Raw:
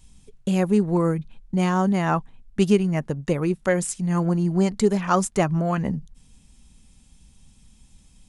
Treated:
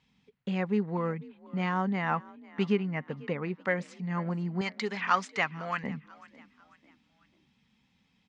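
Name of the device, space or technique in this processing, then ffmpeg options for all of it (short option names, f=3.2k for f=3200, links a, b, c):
kitchen radio: -filter_complex "[0:a]highpass=210,equalizer=f=340:t=q:w=4:g=-9,equalizer=f=620:t=q:w=4:g=-7,equalizer=f=2k:t=q:w=4:g=6,lowpass=f=4.1k:w=0.5412,lowpass=f=4.1k:w=1.3066,equalizer=f=3.5k:t=o:w=0.77:g=-2.5,asettb=1/sr,asplit=3[a][b][c];[a]atrim=end=2.724[d];[b]atrim=start=2.72:end=3.63,asetpts=PTS-STARTPTS,afade=t=in:d=0.004:c=qsin,afade=t=out:st=0.906:d=0.004:c=qsin,lowpass=5k[e];[c]atrim=start=3.626[f];[d][e]acrossfade=d=0.004:c1=hsin:c2=qsin[g];[g][f]acrossfade=d=0.004:c1=qsin:c2=hsin,asettb=1/sr,asplit=3[h][i][j];[h]atrim=end=4.614[k];[i]atrim=start=4.61:end=5.84,asetpts=PTS-STARTPTS,afade=t=in:d=0.004:c=qsin,afade=t=out:st=1.226:d=0.004:c=qsin,tiltshelf=f=890:g=-9[l];[j]atrim=start=5.836[m];[k][l]acrossfade=d=0.004:c1=hsin:c2=qsin[n];[n][m]acrossfade=d=0.004:c1=qsin:c2=hsin,asplit=4[o][p][q][r];[p]adelay=495,afreqshift=42,volume=-21dB[s];[q]adelay=990,afreqshift=84,volume=-29dB[t];[r]adelay=1485,afreqshift=126,volume=-36.9dB[u];[o][s][t][u]amix=inputs=4:normalize=0,volume=-5dB"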